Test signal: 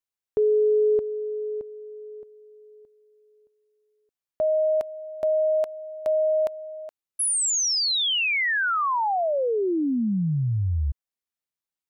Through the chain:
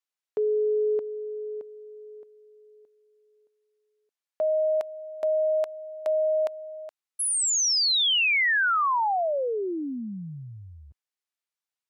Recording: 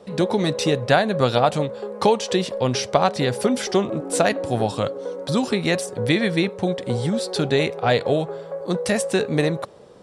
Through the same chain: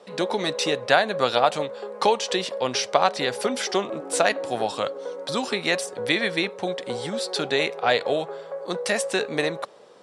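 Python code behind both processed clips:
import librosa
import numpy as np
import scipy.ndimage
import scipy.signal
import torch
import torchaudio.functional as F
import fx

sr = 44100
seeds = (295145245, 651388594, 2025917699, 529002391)

y = fx.weighting(x, sr, curve='A')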